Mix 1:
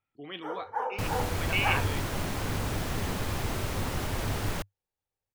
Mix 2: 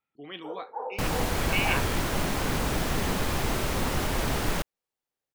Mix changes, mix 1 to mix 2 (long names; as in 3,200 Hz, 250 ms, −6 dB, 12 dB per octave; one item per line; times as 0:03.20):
first sound: add flat-topped band-pass 460 Hz, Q 0.83
second sound +5.0 dB
master: add parametric band 99 Hz −10.5 dB 0.39 octaves